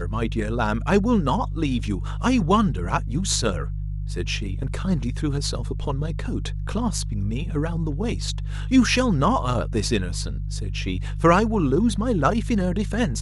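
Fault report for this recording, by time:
hum 50 Hz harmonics 3 -28 dBFS

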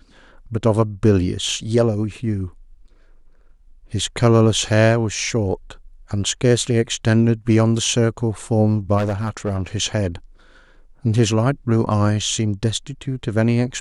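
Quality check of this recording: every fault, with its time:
8.97–9.67 s: clipped -17 dBFS

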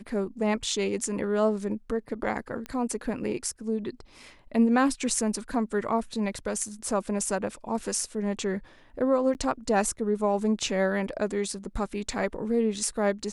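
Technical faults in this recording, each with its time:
2.66 s: pop -22 dBFS
9.34–9.35 s: dropout 9.4 ms

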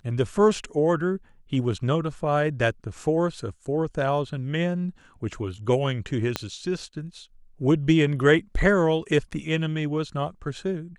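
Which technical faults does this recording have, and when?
6.36 s: pop -10 dBFS

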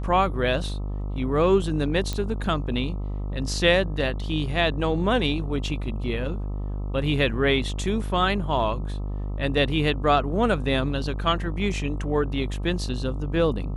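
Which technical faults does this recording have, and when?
buzz 50 Hz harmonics 26 -29 dBFS
2.13 s: pop -14 dBFS

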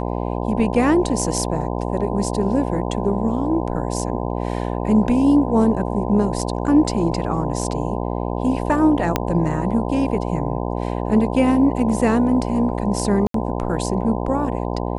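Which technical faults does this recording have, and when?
buzz 60 Hz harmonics 17 -24 dBFS
9.16 s: pop -3 dBFS
13.27–13.34 s: dropout 73 ms

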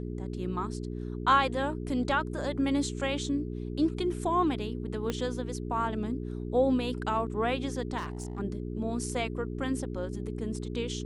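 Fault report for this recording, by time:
hum 60 Hz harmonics 7 -36 dBFS
5.10 s: pop -17 dBFS
7.97–8.40 s: clipped -31 dBFS

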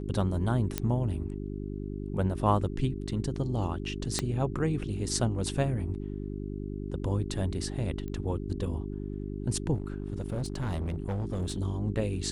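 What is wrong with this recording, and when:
hum 50 Hz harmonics 8 -36 dBFS
0.78 s: pop -12 dBFS
4.19 s: pop -13 dBFS
8.08 s: pop -27 dBFS
9.74–11.58 s: clipped -27.5 dBFS

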